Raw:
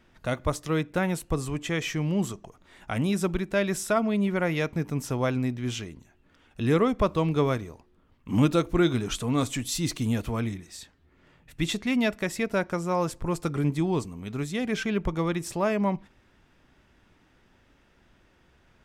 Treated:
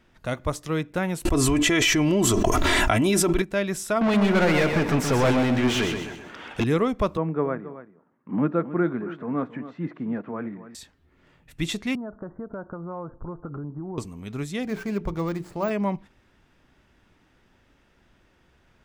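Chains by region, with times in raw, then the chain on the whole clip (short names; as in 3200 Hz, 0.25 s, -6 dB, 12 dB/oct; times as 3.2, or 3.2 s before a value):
1.25–3.42 comb 3 ms, depth 64% + fast leveller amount 100%
4.01–6.64 overdrive pedal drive 31 dB, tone 1900 Hz, clips at -13.5 dBFS + feedback echo 0.127 s, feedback 41%, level -6.5 dB
7.17–10.75 Chebyshev band-pass 170–1700 Hz, order 3 + echo 0.272 s -14 dB
11.95–13.98 steep low-pass 1500 Hz 72 dB/oct + compressor 5:1, threshold -31 dBFS
14.63–15.71 median filter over 15 samples + de-esser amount 100% + notches 60/120/180/240/300/360/420/480 Hz
whole clip: dry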